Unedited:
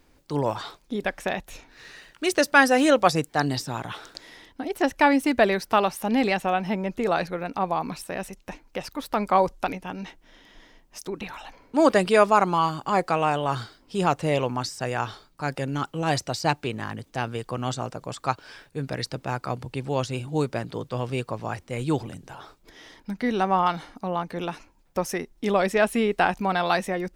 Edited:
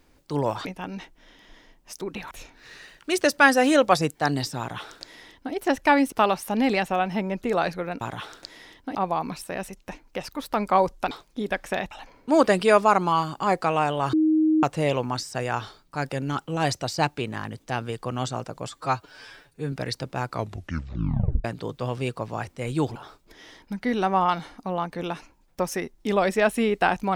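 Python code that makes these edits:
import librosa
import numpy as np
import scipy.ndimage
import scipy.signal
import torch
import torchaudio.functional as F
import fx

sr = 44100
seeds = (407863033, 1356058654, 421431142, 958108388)

y = fx.edit(x, sr, fx.swap(start_s=0.65, length_s=0.8, other_s=9.71, other_length_s=1.66),
    fx.duplicate(start_s=3.73, length_s=0.94, to_s=7.55),
    fx.cut(start_s=5.26, length_s=0.4),
    fx.bleep(start_s=13.59, length_s=0.5, hz=313.0, db=-16.5),
    fx.stretch_span(start_s=18.15, length_s=0.69, factor=1.5),
    fx.tape_stop(start_s=19.42, length_s=1.14),
    fx.cut(start_s=22.07, length_s=0.26), tone=tone)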